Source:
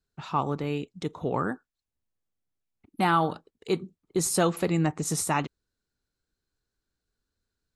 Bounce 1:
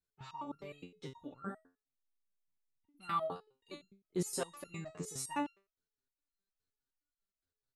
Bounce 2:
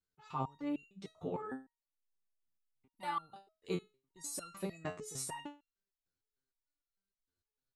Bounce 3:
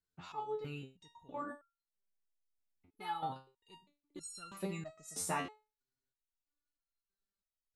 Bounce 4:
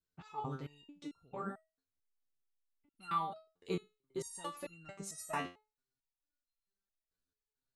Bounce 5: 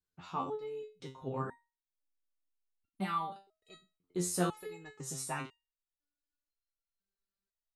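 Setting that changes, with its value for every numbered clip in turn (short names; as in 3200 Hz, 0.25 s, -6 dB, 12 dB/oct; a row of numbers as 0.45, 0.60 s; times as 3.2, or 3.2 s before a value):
stepped resonator, rate: 9.7, 6.6, 3.1, 4.5, 2 Hz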